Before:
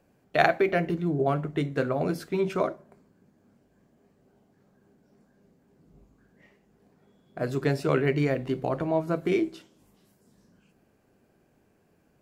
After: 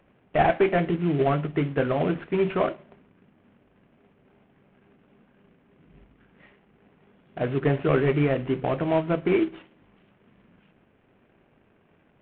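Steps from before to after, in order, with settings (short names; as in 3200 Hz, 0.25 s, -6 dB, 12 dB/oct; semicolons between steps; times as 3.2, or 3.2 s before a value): CVSD 16 kbps; gain +3.5 dB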